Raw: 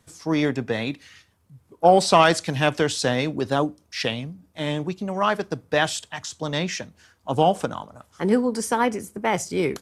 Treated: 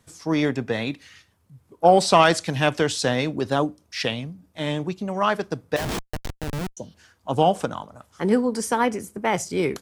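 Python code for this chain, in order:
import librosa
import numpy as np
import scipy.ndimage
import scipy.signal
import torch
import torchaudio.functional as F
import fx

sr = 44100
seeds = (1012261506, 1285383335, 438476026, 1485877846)

y = fx.spec_repair(x, sr, seeds[0], start_s=6.43, length_s=0.48, low_hz=1000.0, high_hz=5800.0, source='before')
y = fx.schmitt(y, sr, flips_db=-24.5, at=(5.76, 6.77))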